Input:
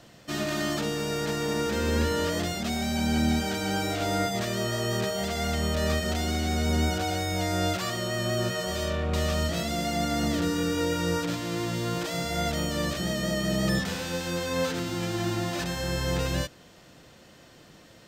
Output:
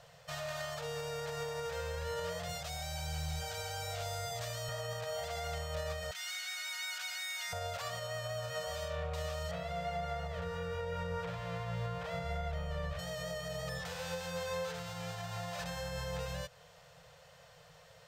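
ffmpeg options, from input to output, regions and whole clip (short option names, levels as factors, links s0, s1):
-filter_complex "[0:a]asettb=1/sr,asplit=3[s0][s1][s2];[s0]atrim=end=2.494[s3];[s1]atrim=start=2.49:end=4.69,asetpts=PTS-STARTPTS,afade=t=in:d=0.004:c=qsin,afade=t=out:st=2.196:d=0.004:c=qsin,bass=f=250:g=2,treble=f=4000:g=3,acrossover=split=210|3000[s4][s5][s6];[s5]acompressor=threshold=0.0282:ratio=6:attack=3.2:release=140:knee=2.83:detection=peak[s7];[s4][s7][s6]amix=inputs=3:normalize=0,asoftclip=type=hard:threshold=0.1[s8];[s2]atrim=start=4.686[s9];[s3][s8]acrossfade=d=0.004:c1=hsin:c2=qsin[s10];[s10][s9]acrossfade=d=0.004:c1=qsin:c2=hsin,asettb=1/sr,asplit=3[s11][s12][s13];[s11]atrim=end=6.114[s14];[s12]atrim=start=6.11:end=7.53,asetpts=PTS-STARTPTS,afade=t=in:d=0.004:c=qsin,afade=t=out:st=1.416:d=0.004:c=qsin,highpass=f=1400:w=0.5412,highpass=f=1400:w=1.3066,aecho=1:1:3.2:0.44,atrim=end_sample=62622[s15];[s13]atrim=start=7.526[s16];[s14][s15]acrossfade=d=0.004:c1=hsin:c2=qsin[s17];[s17][s16]acrossfade=d=0.004:c1=qsin:c2=hsin,asettb=1/sr,asplit=3[s18][s19][s20];[s18]atrim=end=9.514[s21];[s19]atrim=start=9.51:end=12.99,asetpts=PTS-STARTPTS,afade=t=in:d=0.004:c=qsin,afade=t=out:st=3.476:d=0.004:c=qsin,acrossover=split=3100[s22][s23];[s23]acompressor=threshold=0.00251:ratio=4:attack=1:release=60[s24];[s22][s24]amix=inputs=2:normalize=0,asubboost=boost=6:cutoff=100[s25];[s20]atrim=start=12.986[s26];[s21][s25]acrossfade=d=0.004:c1=hsin:c2=qsin[s27];[s27][s26]acrossfade=d=0.004:c1=qsin:c2=hsin,alimiter=limit=0.0668:level=0:latency=1:release=157,equalizer=f=720:t=o:w=2.2:g=4,afftfilt=real='re*(1-between(b*sr/4096,180,440))':imag='im*(1-between(b*sr/4096,180,440))':win_size=4096:overlap=0.75,volume=0.473"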